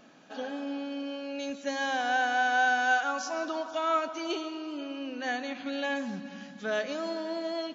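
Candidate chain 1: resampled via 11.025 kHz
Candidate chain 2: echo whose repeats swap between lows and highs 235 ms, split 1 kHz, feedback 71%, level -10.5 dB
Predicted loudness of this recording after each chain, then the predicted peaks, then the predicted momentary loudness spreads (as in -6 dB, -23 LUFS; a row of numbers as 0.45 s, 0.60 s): -31.0 LUFS, -30.5 LUFS; -14.0 dBFS, -13.5 dBFS; 12 LU, 12 LU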